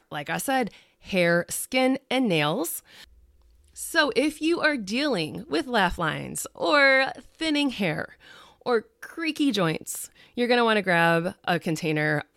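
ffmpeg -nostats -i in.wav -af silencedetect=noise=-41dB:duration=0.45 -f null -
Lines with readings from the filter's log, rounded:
silence_start: 3.04
silence_end: 3.76 | silence_duration: 0.72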